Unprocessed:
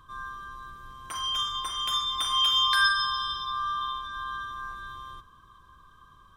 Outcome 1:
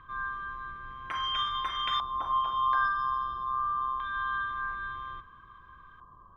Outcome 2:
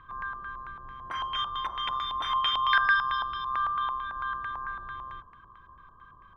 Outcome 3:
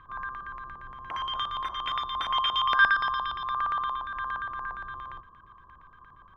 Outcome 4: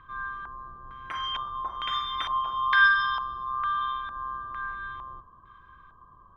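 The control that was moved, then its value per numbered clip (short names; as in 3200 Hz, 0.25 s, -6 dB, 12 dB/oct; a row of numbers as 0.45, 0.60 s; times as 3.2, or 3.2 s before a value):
LFO low-pass, rate: 0.25, 4.5, 8.6, 1.1 Hz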